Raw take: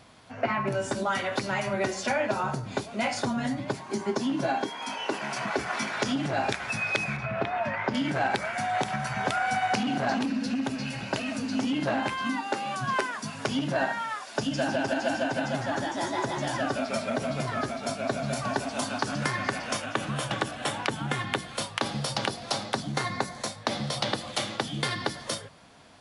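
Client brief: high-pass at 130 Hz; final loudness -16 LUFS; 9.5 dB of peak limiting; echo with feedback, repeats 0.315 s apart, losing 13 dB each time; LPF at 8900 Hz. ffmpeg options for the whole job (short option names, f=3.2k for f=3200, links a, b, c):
-af "highpass=130,lowpass=8.9k,alimiter=limit=-20dB:level=0:latency=1,aecho=1:1:315|630|945:0.224|0.0493|0.0108,volume=15dB"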